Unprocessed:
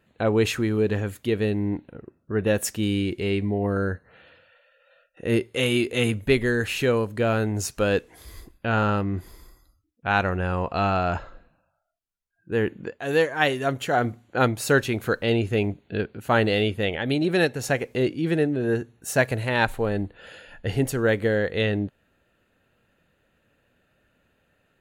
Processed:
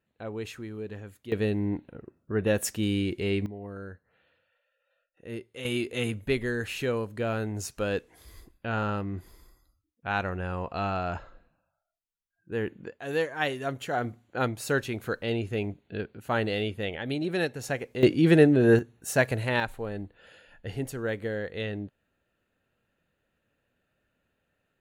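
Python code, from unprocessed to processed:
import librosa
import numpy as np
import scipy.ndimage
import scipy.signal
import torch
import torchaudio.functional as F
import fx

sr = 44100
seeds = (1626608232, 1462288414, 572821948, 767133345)

y = fx.gain(x, sr, db=fx.steps((0.0, -15.0), (1.32, -3.0), (3.46, -15.5), (5.65, -7.0), (18.03, 4.5), (18.79, -2.5), (19.6, -9.5)))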